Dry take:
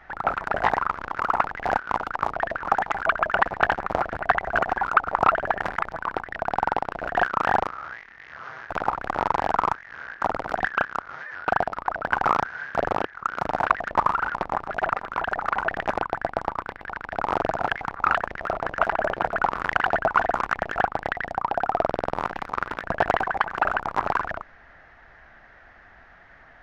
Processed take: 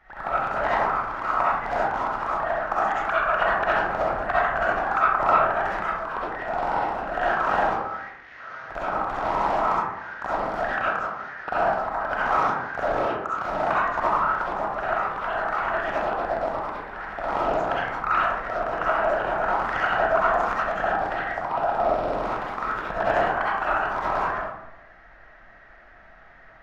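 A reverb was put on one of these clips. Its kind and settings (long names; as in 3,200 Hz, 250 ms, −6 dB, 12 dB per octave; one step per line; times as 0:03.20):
comb and all-pass reverb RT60 0.91 s, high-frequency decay 0.45×, pre-delay 25 ms, DRR −9 dB
level −9 dB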